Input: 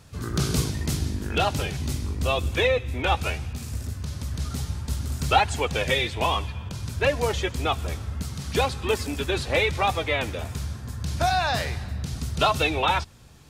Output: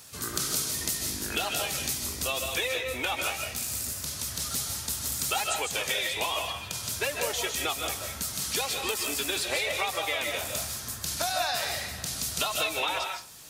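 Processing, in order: RIAA curve recording; compressor 5:1, threshold -28 dBFS, peak gain reduction 13 dB; reverb RT60 0.35 s, pre-delay 0.115 s, DRR 2.5 dB

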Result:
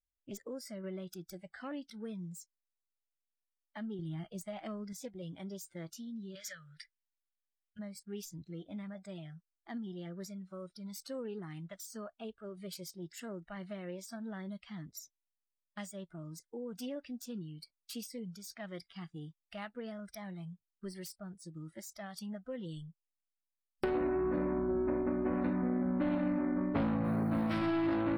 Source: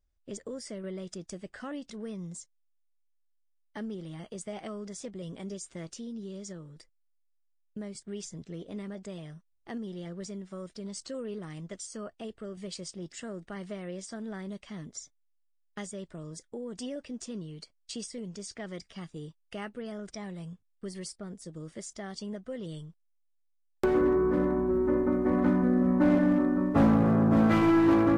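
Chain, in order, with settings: self-modulated delay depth 0.22 ms; 6.35–7.79 EQ curve 120 Hz 0 dB, 320 Hz -22 dB, 560 Hz 0 dB, 1000 Hz -3 dB, 1700 Hz +15 dB, 3700 Hz +10 dB, 9100 Hz +4 dB; 27.04–27.54 short-mantissa float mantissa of 4-bit; compressor 6:1, threshold -26 dBFS, peak gain reduction 7.5 dB; spectral noise reduction 16 dB; 3.99–4.93 low shelf 170 Hz +11 dB; gain -3 dB

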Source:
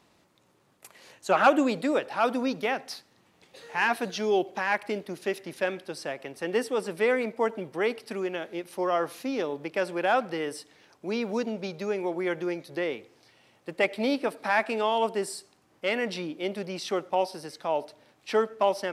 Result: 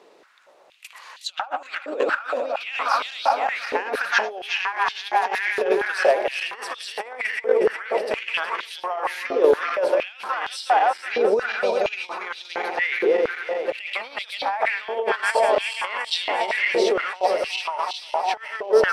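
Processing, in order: regenerating reverse delay 0.183 s, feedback 83%, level -7 dB; high shelf 7900 Hz -11.5 dB; negative-ratio compressor -29 dBFS, ratio -0.5; stepped high-pass 4.3 Hz 440–3600 Hz; gain +4.5 dB

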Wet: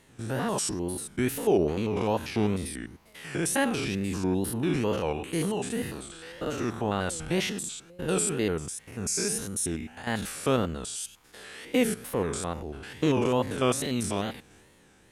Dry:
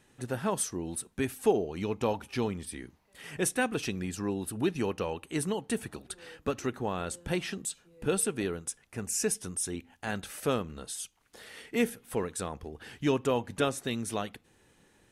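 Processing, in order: stepped spectrum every 0.1 s; transient shaper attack -1 dB, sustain +5 dB; wow and flutter 150 cents; gain +6 dB

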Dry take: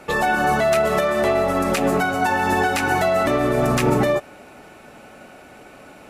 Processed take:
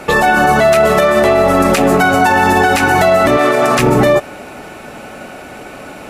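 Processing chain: 3.37–3.79 weighting filter A; maximiser +14 dB; gain -1.5 dB

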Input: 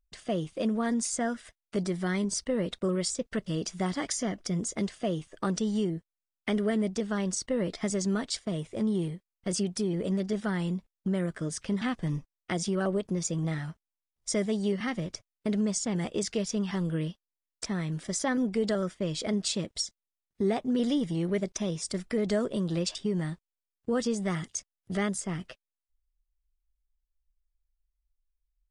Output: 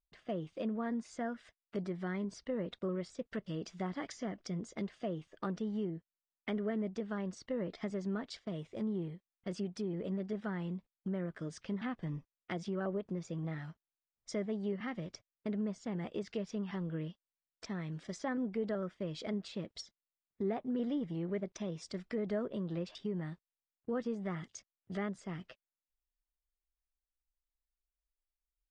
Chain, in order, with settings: treble ducked by the level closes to 2000 Hz, closed at -25.5 dBFS; low shelf 61 Hz -9 dB; low-pass opened by the level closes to 2000 Hz, open at -29 dBFS; gain -7.5 dB

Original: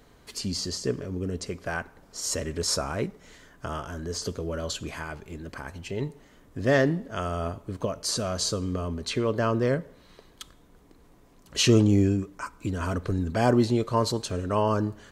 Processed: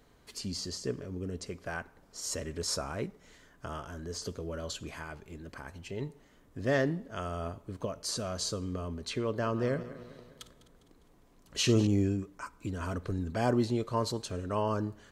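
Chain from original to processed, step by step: 9.33–11.87 regenerating reverse delay 0.101 s, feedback 70%, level -14 dB; gain -6.5 dB

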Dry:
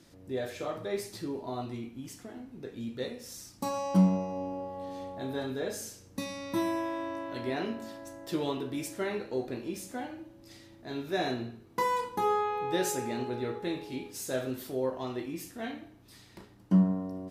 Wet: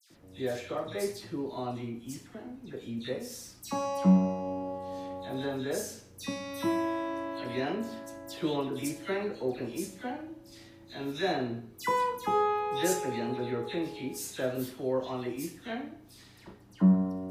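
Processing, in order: dispersion lows, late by 0.104 s, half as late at 2400 Hz; gain +1 dB

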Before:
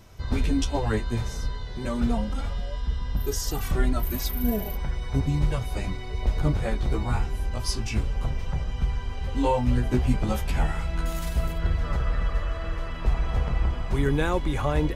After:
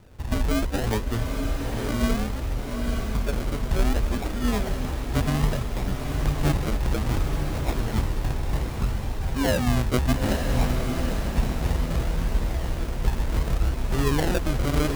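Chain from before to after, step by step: formant shift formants +2 st; decimation with a swept rate 39×, swing 60% 0.63 Hz; diffused feedback echo 0.906 s, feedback 41%, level -4.5 dB

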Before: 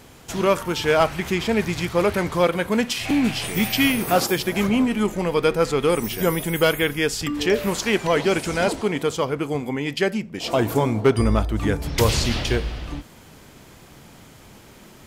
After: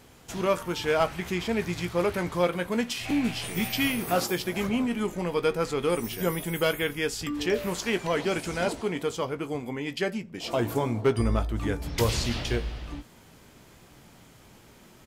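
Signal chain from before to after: doubler 17 ms -11 dB; gain -7 dB

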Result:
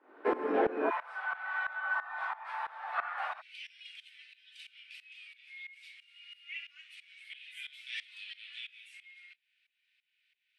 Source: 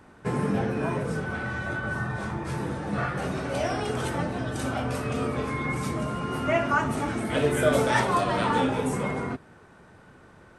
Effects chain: steep high-pass 290 Hz 48 dB/oct, from 0.89 s 760 Hz, from 3.4 s 2400 Hz; tremolo saw up 3 Hz, depth 90%; air absorption 440 m; gain +6 dB

